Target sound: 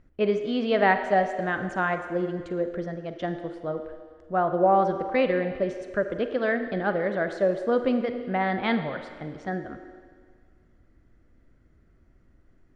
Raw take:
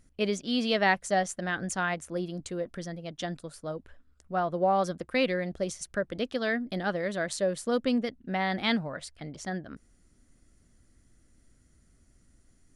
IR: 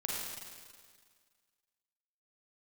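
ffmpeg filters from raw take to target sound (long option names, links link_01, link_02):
-filter_complex "[0:a]lowpass=1900,asplit=2[link_01][link_02];[link_02]lowshelf=frequency=250:width_type=q:width=3:gain=-8[link_03];[1:a]atrim=start_sample=2205[link_04];[link_03][link_04]afir=irnorm=-1:irlink=0,volume=-8dB[link_05];[link_01][link_05]amix=inputs=2:normalize=0,volume=2dB"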